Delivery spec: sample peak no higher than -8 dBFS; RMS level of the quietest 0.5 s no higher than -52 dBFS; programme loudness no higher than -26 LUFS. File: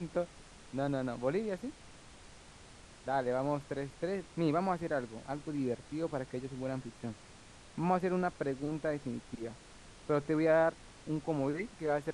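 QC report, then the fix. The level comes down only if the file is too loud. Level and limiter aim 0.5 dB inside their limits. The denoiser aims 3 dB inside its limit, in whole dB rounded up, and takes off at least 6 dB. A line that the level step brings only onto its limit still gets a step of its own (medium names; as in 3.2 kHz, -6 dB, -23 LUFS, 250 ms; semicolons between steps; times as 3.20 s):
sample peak -17.0 dBFS: pass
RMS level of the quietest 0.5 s -55 dBFS: pass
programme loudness -35.5 LUFS: pass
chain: none needed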